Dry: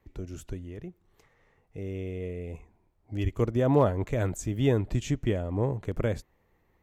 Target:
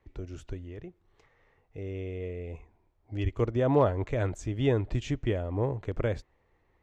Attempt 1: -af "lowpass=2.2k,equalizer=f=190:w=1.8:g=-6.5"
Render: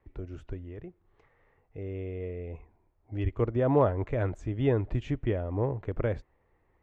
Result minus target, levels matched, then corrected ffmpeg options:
4000 Hz band -7.0 dB
-af "lowpass=4.9k,equalizer=f=190:w=1.8:g=-6.5"

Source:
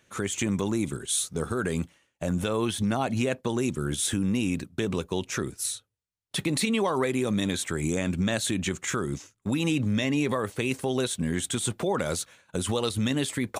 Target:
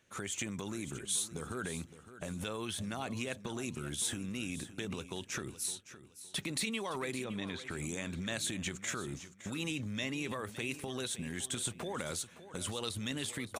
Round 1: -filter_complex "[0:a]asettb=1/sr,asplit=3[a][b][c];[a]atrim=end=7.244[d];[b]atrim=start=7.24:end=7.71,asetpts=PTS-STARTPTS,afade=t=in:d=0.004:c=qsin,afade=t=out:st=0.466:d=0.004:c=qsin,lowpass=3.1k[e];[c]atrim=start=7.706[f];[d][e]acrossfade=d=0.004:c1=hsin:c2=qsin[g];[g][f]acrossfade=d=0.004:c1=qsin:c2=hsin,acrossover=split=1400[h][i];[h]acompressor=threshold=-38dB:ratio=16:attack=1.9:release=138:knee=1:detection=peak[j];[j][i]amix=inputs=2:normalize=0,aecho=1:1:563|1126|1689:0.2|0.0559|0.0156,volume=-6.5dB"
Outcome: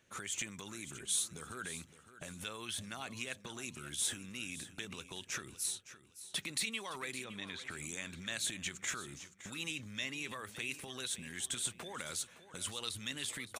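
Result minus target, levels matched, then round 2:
compressor: peak gain reduction +9.5 dB
-filter_complex "[0:a]asettb=1/sr,asplit=3[a][b][c];[a]atrim=end=7.244[d];[b]atrim=start=7.24:end=7.71,asetpts=PTS-STARTPTS,afade=t=in:d=0.004:c=qsin,afade=t=out:st=0.466:d=0.004:c=qsin,lowpass=3.1k[e];[c]atrim=start=7.706[f];[d][e]acrossfade=d=0.004:c1=hsin:c2=qsin[g];[g][f]acrossfade=d=0.004:c1=qsin:c2=hsin,acrossover=split=1400[h][i];[h]acompressor=threshold=-28dB:ratio=16:attack=1.9:release=138:knee=1:detection=peak[j];[j][i]amix=inputs=2:normalize=0,aecho=1:1:563|1126|1689:0.2|0.0559|0.0156,volume=-6.5dB"

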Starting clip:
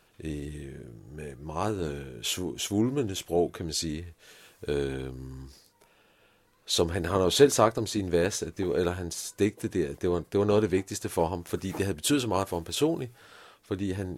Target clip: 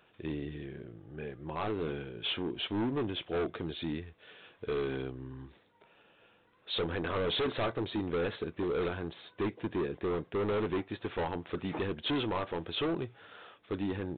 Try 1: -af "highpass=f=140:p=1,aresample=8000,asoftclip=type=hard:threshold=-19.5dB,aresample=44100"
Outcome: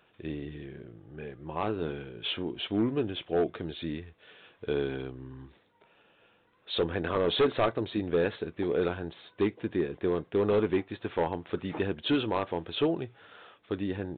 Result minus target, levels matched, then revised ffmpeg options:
hard clip: distortion -6 dB
-af "highpass=f=140:p=1,aresample=8000,asoftclip=type=hard:threshold=-28.5dB,aresample=44100"

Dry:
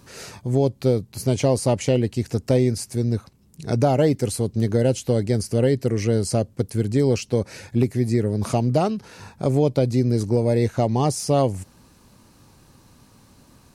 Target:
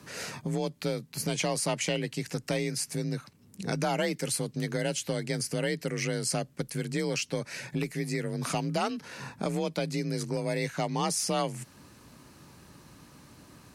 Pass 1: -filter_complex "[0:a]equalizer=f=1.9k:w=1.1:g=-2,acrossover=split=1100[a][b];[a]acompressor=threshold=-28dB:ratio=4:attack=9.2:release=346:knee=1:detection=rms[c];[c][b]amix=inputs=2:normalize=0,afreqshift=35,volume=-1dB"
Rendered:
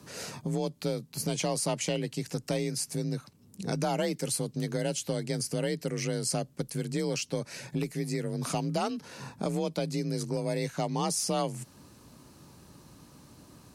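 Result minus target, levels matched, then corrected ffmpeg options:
2000 Hz band -5.0 dB
-filter_complex "[0:a]equalizer=f=1.9k:w=1.1:g=4.5,acrossover=split=1100[a][b];[a]acompressor=threshold=-28dB:ratio=4:attack=9.2:release=346:knee=1:detection=rms[c];[c][b]amix=inputs=2:normalize=0,afreqshift=35,volume=-1dB"

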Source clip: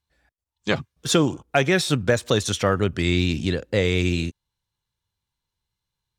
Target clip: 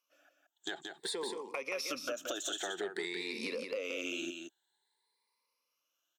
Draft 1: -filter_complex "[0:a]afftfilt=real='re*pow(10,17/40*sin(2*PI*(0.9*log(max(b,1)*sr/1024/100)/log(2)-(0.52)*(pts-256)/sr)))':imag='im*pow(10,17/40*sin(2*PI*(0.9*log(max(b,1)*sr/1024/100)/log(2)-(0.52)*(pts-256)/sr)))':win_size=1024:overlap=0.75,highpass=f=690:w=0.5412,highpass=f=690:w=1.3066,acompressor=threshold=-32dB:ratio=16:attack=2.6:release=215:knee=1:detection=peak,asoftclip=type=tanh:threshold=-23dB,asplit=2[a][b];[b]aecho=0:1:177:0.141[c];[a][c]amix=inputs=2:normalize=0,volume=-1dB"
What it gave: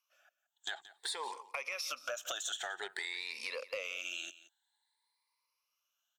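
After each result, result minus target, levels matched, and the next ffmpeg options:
250 Hz band -19.0 dB; echo-to-direct -11.5 dB
-filter_complex "[0:a]afftfilt=real='re*pow(10,17/40*sin(2*PI*(0.9*log(max(b,1)*sr/1024/100)/log(2)-(0.52)*(pts-256)/sr)))':imag='im*pow(10,17/40*sin(2*PI*(0.9*log(max(b,1)*sr/1024/100)/log(2)-(0.52)*(pts-256)/sr)))':win_size=1024:overlap=0.75,highpass=f=340:w=0.5412,highpass=f=340:w=1.3066,acompressor=threshold=-32dB:ratio=16:attack=2.6:release=215:knee=1:detection=peak,asoftclip=type=tanh:threshold=-23dB,asplit=2[a][b];[b]aecho=0:1:177:0.141[c];[a][c]amix=inputs=2:normalize=0,volume=-1dB"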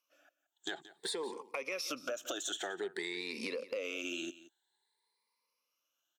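echo-to-direct -11.5 dB
-filter_complex "[0:a]afftfilt=real='re*pow(10,17/40*sin(2*PI*(0.9*log(max(b,1)*sr/1024/100)/log(2)-(0.52)*(pts-256)/sr)))':imag='im*pow(10,17/40*sin(2*PI*(0.9*log(max(b,1)*sr/1024/100)/log(2)-(0.52)*(pts-256)/sr)))':win_size=1024:overlap=0.75,highpass=f=340:w=0.5412,highpass=f=340:w=1.3066,acompressor=threshold=-32dB:ratio=16:attack=2.6:release=215:knee=1:detection=peak,asoftclip=type=tanh:threshold=-23dB,asplit=2[a][b];[b]aecho=0:1:177:0.531[c];[a][c]amix=inputs=2:normalize=0,volume=-1dB"

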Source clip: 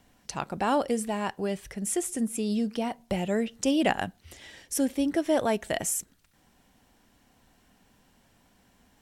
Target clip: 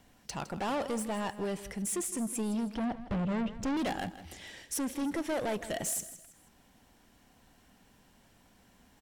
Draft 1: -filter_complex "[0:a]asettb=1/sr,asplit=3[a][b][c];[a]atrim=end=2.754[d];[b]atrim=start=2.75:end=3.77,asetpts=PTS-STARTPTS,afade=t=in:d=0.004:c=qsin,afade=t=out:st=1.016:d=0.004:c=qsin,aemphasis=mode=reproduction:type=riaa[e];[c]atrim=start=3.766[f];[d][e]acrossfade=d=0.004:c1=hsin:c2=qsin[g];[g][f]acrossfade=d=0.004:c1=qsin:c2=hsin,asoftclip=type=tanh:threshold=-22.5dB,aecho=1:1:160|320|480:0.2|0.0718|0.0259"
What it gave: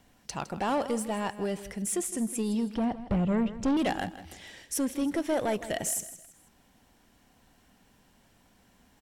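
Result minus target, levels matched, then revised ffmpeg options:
soft clip: distortion -5 dB
-filter_complex "[0:a]asettb=1/sr,asplit=3[a][b][c];[a]atrim=end=2.754[d];[b]atrim=start=2.75:end=3.77,asetpts=PTS-STARTPTS,afade=t=in:d=0.004:c=qsin,afade=t=out:st=1.016:d=0.004:c=qsin,aemphasis=mode=reproduction:type=riaa[e];[c]atrim=start=3.766[f];[d][e]acrossfade=d=0.004:c1=hsin:c2=qsin[g];[g][f]acrossfade=d=0.004:c1=qsin:c2=hsin,asoftclip=type=tanh:threshold=-29.5dB,aecho=1:1:160|320|480:0.2|0.0718|0.0259"

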